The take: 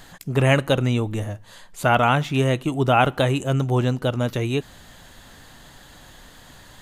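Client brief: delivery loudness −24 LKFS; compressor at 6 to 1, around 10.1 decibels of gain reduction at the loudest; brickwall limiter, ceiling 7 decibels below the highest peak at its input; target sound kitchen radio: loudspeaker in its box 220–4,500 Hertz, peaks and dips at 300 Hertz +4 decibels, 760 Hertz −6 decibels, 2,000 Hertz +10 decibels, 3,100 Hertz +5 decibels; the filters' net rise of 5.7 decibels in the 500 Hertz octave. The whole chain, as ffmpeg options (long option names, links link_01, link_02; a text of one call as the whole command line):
ffmpeg -i in.wav -af "equalizer=frequency=500:width_type=o:gain=8,acompressor=threshold=-20dB:ratio=6,alimiter=limit=-17.5dB:level=0:latency=1,highpass=220,equalizer=frequency=300:width_type=q:width=4:gain=4,equalizer=frequency=760:width_type=q:width=4:gain=-6,equalizer=frequency=2000:width_type=q:width=4:gain=10,equalizer=frequency=3100:width_type=q:width=4:gain=5,lowpass=frequency=4500:width=0.5412,lowpass=frequency=4500:width=1.3066,volume=4.5dB" out.wav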